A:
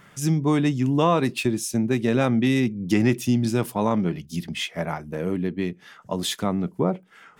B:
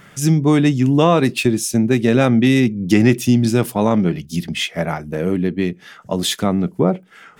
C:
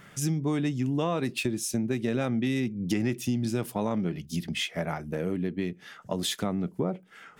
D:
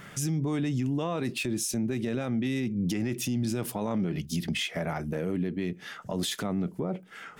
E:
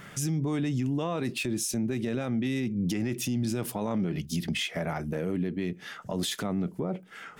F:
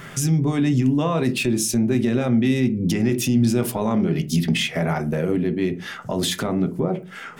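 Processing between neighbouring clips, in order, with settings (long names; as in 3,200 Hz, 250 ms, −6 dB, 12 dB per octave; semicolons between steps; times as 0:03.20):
parametric band 1,000 Hz −4.5 dB 0.45 octaves; level +7 dB
downward compressor 2.5 to 1, threshold −21 dBFS, peak gain reduction 9 dB; level −6.5 dB
brickwall limiter −26.5 dBFS, peak gain reduction 10.5 dB; level +5 dB
no processing that can be heard
on a send at −5.5 dB: high-frequency loss of the air 270 metres + convolution reverb RT60 0.30 s, pre-delay 5 ms; on the sum: level +7.5 dB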